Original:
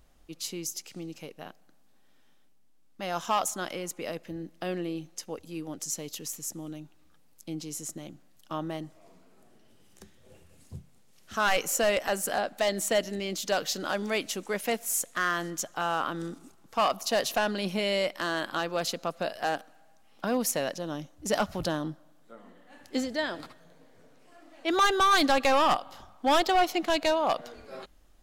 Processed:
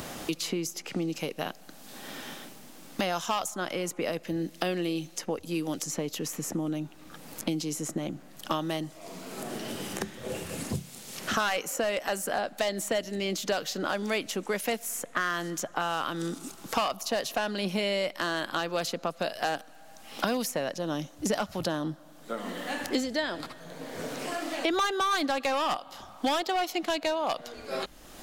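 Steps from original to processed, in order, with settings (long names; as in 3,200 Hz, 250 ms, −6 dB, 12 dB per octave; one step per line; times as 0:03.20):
multiband upward and downward compressor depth 100%
level −1 dB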